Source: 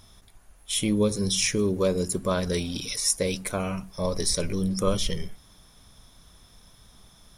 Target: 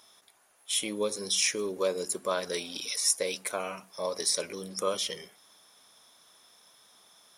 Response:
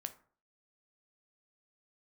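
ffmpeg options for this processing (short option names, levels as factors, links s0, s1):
-af "highpass=470,volume=0.841"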